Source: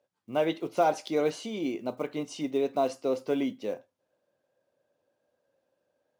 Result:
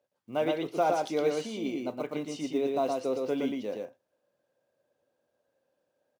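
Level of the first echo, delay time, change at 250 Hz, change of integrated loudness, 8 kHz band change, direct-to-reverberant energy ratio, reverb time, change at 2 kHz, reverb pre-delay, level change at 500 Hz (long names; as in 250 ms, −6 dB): −3.0 dB, 116 ms, −0.5 dB, −1.0 dB, −0.5 dB, no reverb audible, no reverb audible, −0.5 dB, no reverb audible, −0.5 dB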